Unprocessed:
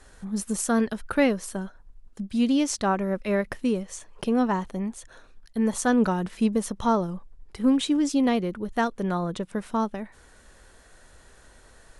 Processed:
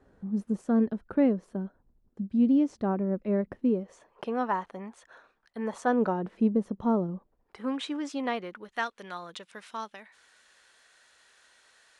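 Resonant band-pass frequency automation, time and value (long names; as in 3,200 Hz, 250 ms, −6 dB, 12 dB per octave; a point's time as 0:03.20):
resonant band-pass, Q 0.78
0:03.60 250 Hz
0:04.34 1,100 Hz
0:05.57 1,100 Hz
0:06.60 270 Hz
0:07.10 270 Hz
0:07.63 1,300 Hz
0:08.28 1,300 Hz
0:09.08 3,200 Hz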